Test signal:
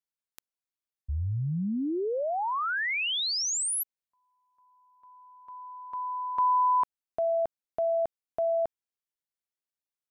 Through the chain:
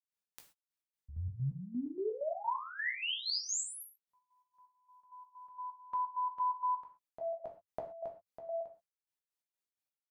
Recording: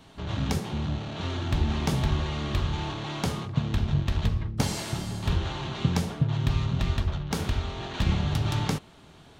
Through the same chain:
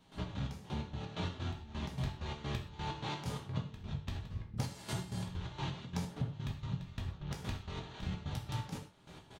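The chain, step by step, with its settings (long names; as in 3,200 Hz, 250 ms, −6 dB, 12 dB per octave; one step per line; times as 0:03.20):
parametric band 100 Hz +6 dB 0.28 octaves
downward compressor 6 to 1, threshold −33 dBFS
gate pattern ".x.x..x.x" 129 BPM −12 dB
double-tracking delay 16 ms −9 dB
reverb whose tail is shaped and stops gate 150 ms falling, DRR 2.5 dB
level −2.5 dB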